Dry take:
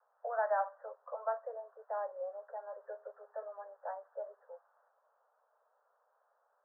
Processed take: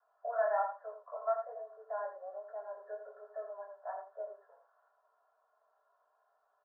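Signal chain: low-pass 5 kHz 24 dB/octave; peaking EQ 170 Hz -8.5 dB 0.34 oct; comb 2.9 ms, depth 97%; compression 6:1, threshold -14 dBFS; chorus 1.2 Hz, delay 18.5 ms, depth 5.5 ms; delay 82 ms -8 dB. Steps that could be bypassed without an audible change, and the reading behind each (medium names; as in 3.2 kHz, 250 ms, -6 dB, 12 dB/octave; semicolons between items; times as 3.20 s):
low-pass 5 kHz: input has nothing above 1.7 kHz; peaking EQ 170 Hz: input has nothing below 380 Hz; compression, threshold -14 dBFS: peak at its input -19.0 dBFS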